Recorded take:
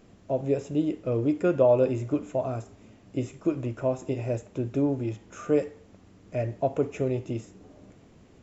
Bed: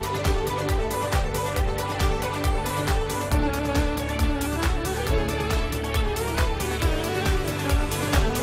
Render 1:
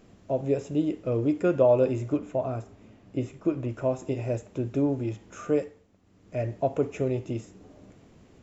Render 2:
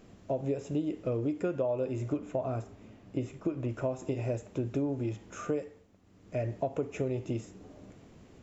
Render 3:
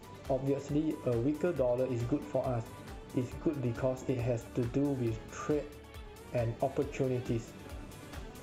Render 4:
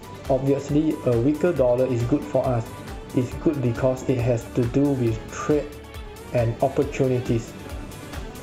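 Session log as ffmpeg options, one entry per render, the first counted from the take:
-filter_complex "[0:a]asettb=1/sr,asplit=3[s0][s1][s2];[s0]atrim=end=2.174[s3];[s1]atrim=start=2.17:end=3.69,asetpts=PTS-STARTPTS,afade=t=in:d=0.004:c=qsin,afade=t=out:st=1.516:d=0.004:c=qsin,lowpass=f=3700:p=1[s4];[s2]atrim=start=3.686[s5];[s3][s4]acrossfade=d=0.004:c1=hsin:c2=qsin[s6];[s6][s5]acrossfade=d=0.004:c1=qsin:c2=hsin,asplit=3[s7][s8][s9];[s7]atrim=end=5.88,asetpts=PTS-STARTPTS,afade=t=out:st=5.45:d=0.43:silence=0.298538[s10];[s8]atrim=start=5.88:end=6.02,asetpts=PTS-STARTPTS,volume=0.299[s11];[s9]atrim=start=6.02,asetpts=PTS-STARTPTS,afade=t=in:d=0.43:silence=0.298538[s12];[s10][s11][s12]concat=n=3:v=0:a=1"
-af "acompressor=threshold=0.0398:ratio=6"
-filter_complex "[1:a]volume=0.0631[s0];[0:a][s0]amix=inputs=2:normalize=0"
-af "volume=3.55"

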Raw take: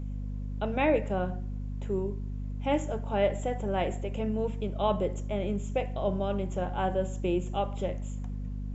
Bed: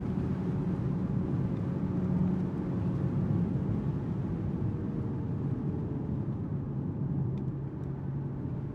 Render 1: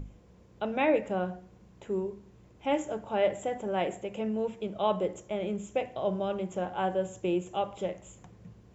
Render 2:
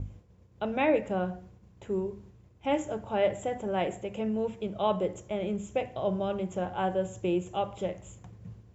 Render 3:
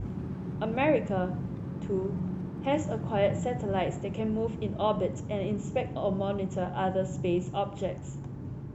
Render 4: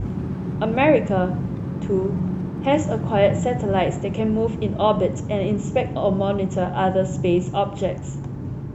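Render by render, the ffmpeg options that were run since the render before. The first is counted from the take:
-af "bandreject=f=50:t=h:w=6,bandreject=f=100:t=h:w=6,bandreject=f=150:t=h:w=6,bandreject=f=200:t=h:w=6,bandreject=f=250:t=h:w=6,bandreject=f=300:t=h:w=6"
-af "agate=range=0.0224:threshold=0.00316:ratio=3:detection=peak,equalizer=f=90:t=o:w=1:g=11"
-filter_complex "[1:a]volume=0.596[s0];[0:a][s0]amix=inputs=2:normalize=0"
-af "volume=2.82"

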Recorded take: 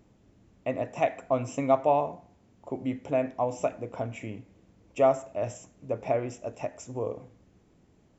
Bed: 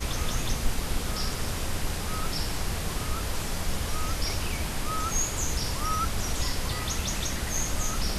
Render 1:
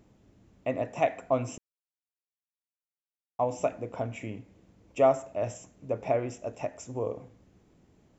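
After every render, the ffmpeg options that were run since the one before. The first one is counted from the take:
-filter_complex "[0:a]asplit=3[s0][s1][s2];[s0]atrim=end=1.58,asetpts=PTS-STARTPTS,afade=t=out:st=1.576:d=0.004:c=hsin[s3];[s1]atrim=start=1.58:end=3.39,asetpts=PTS-STARTPTS,volume=0[s4];[s2]atrim=start=3.39,asetpts=PTS-STARTPTS,afade=t=in:d=0.004:c=hsin[s5];[s3][s4][s5]concat=n=3:v=0:a=1"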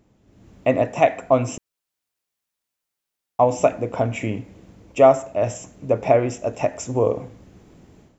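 -af "dynaudnorm=f=250:g=3:m=4.47"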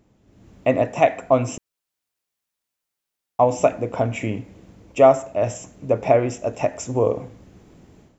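-af anull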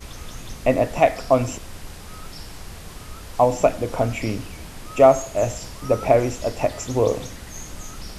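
-filter_complex "[1:a]volume=0.422[s0];[0:a][s0]amix=inputs=2:normalize=0"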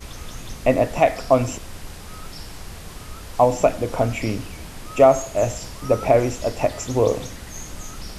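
-af "volume=1.12,alimiter=limit=0.708:level=0:latency=1"

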